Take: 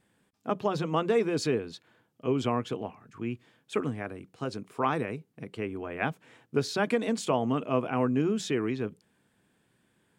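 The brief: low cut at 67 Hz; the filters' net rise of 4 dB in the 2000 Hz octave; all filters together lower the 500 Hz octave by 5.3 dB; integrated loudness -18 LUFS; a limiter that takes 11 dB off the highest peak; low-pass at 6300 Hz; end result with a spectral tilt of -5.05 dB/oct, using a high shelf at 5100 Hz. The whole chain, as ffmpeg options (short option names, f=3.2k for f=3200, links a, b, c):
-af "highpass=67,lowpass=6.3k,equalizer=f=500:t=o:g=-7,equalizer=f=2k:t=o:g=5,highshelf=f=5.1k:g=4.5,volume=17dB,alimiter=limit=-5.5dB:level=0:latency=1"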